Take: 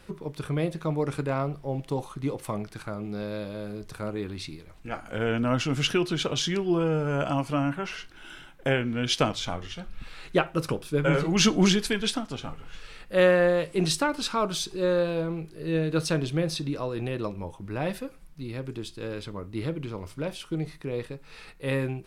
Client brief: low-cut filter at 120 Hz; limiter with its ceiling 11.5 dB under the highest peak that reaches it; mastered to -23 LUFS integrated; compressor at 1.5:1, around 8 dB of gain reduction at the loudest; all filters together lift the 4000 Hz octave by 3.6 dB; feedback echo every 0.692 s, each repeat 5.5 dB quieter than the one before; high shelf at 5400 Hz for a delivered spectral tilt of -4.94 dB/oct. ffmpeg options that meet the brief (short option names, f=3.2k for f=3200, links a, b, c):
-af "highpass=120,equalizer=f=4k:t=o:g=6,highshelf=f=5.4k:g=-3.5,acompressor=threshold=-39dB:ratio=1.5,alimiter=level_in=2dB:limit=-24dB:level=0:latency=1,volume=-2dB,aecho=1:1:692|1384|2076|2768|3460|4152|4844:0.531|0.281|0.149|0.079|0.0419|0.0222|0.0118,volume=13dB"